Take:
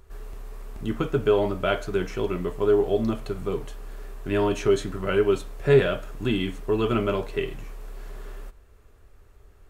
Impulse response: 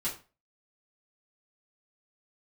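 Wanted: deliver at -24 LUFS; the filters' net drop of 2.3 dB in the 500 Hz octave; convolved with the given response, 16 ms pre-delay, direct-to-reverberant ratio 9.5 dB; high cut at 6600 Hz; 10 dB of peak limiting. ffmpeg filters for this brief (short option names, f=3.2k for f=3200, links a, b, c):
-filter_complex "[0:a]lowpass=6.6k,equalizer=f=500:t=o:g=-3,alimiter=limit=-18dB:level=0:latency=1,asplit=2[a][b];[1:a]atrim=start_sample=2205,adelay=16[c];[b][c]afir=irnorm=-1:irlink=0,volume=-13.5dB[d];[a][d]amix=inputs=2:normalize=0,volume=5.5dB"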